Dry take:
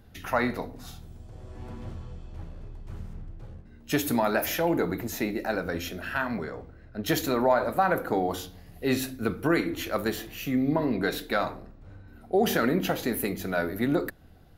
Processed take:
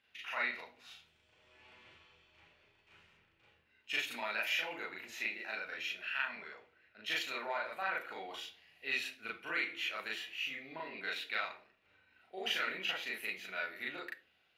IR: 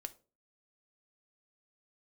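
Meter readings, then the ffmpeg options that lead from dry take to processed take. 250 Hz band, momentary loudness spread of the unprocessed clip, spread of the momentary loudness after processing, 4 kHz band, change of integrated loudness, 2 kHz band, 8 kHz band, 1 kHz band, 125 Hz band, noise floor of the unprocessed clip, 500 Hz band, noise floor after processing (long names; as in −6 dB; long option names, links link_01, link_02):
−27.0 dB, 19 LU, 13 LU, −2.0 dB, −10.0 dB, −3.5 dB, −14.5 dB, −13.5 dB, below −30 dB, −51 dBFS, −19.5 dB, −73 dBFS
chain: -filter_complex "[0:a]bandpass=frequency=2600:width_type=q:width=3.4:csg=0,asplit=2[link_01][link_02];[1:a]atrim=start_sample=2205,adelay=37[link_03];[link_02][link_03]afir=irnorm=-1:irlink=0,volume=6dB[link_04];[link_01][link_04]amix=inputs=2:normalize=0"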